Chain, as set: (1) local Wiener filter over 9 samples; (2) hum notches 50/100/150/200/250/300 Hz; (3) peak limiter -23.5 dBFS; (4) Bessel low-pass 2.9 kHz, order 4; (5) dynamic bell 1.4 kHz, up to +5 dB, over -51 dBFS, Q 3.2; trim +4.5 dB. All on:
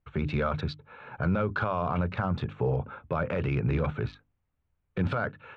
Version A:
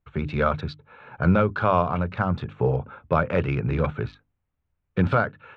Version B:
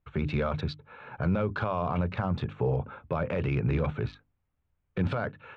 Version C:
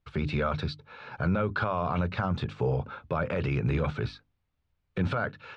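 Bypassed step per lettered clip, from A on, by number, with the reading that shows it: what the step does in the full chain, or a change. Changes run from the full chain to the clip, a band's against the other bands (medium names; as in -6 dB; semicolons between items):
3, mean gain reduction 2.5 dB; 5, crest factor change -2.0 dB; 1, 4 kHz band +3.5 dB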